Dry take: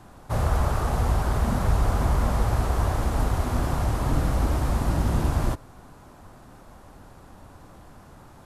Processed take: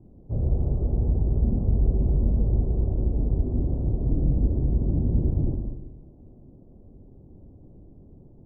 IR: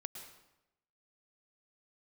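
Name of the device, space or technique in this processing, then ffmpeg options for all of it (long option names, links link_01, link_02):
next room: -filter_complex "[0:a]lowpass=frequency=440:width=0.5412,lowpass=frequency=440:width=1.3066[link_01];[1:a]atrim=start_sample=2205[link_02];[link_01][link_02]afir=irnorm=-1:irlink=0,volume=3.5dB"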